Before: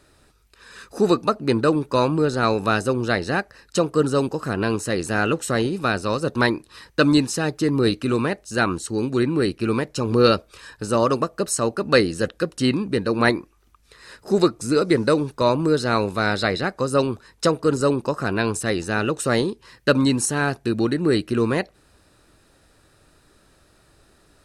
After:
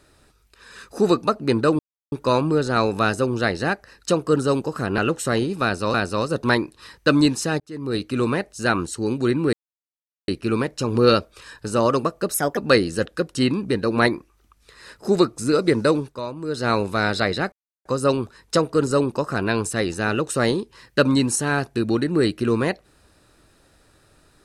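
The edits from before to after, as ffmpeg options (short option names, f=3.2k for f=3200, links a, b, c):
-filter_complex "[0:a]asplit=11[a][b][c][d][e][f][g][h][i][j][k];[a]atrim=end=1.79,asetpts=PTS-STARTPTS,afade=t=out:st=1.786:d=0.004:c=hsin,apad=pad_dur=0.33[l];[b]atrim=start=1.79:end=4.652,asetpts=PTS-STARTPTS,afade=t=in:d=0.004:c=hsin[m];[c]atrim=start=5.208:end=6.172[n];[d]atrim=start=5.858:end=7.52,asetpts=PTS-STARTPTS,afade=t=out:st=1.658:d=0.004:c=hsin[o];[e]atrim=start=7.52:end=9.45,asetpts=PTS-STARTPTS,afade=t=in:d=0.64,afade=t=out:st=1.926:d=0.004:c=hsin,apad=pad_dur=0.75[p];[f]atrim=start=9.45:end=11.514,asetpts=PTS-STARTPTS,afade=t=in:d=0.004:c=hsin[q];[g]atrim=start=11.51:end=11.8,asetpts=PTS-STARTPTS,asetrate=55125,aresample=44100,atrim=end_sample=10231,asetpts=PTS-STARTPTS[r];[h]atrim=start=11.796:end=15.5,asetpts=PTS-STARTPTS,afade=t=out:st=3.404:d=0.3:c=qua:silence=0.251189[s];[i]atrim=start=15.5:end=15.59,asetpts=PTS-STARTPTS,volume=-12dB[t];[j]atrim=start=15.59:end=16.75,asetpts=PTS-STARTPTS,afade=t=in:d=0.3:c=qua:silence=0.251189,afade=t=out:st=1.156:d=0.004:c=hsin,apad=pad_dur=0.33[u];[k]atrim=start=16.75,asetpts=PTS-STARTPTS,afade=t=in:d=0.004:c=hsin[v];[l][m]concat=n=2:v=0:a=1[w];[w][n]acrossfade=d=0.004:c1=hsin:c2=hsin[x];[o][p][q]concat=n=3:v=0:a=1[y];[x][y]acrossfade=d=0.004:c1=hsin:c2=hsin[z];[z][r]acrossfade=d=0.004:c1=hsin:c2=hsin[aa];[s][t][u][v]concat=n=4:v=0:a=1[ab];[aa][ab]acrossfade=d=0.004:c1=hsin:c2=hsin"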